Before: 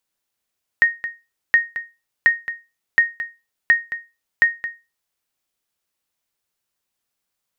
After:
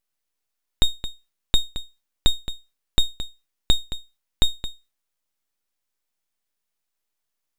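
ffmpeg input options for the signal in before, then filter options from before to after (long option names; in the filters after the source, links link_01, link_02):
-f lavfi -i "aevalsrc='0.531*(sin(2*PI*1860*mod(t,0.72))*exp(-6.91*mod(t,0.72)/0.26)+0.224*sin(2*PI*1860*max(mod(t,0.72)-0.22,0))*exp(-6.91*max(mod(t,0.72)-0.22,0)/0.26))':duration=4.32:sample_rate=44100"
-af "aeval=exprs='abs(val(0))':channel_layout=same"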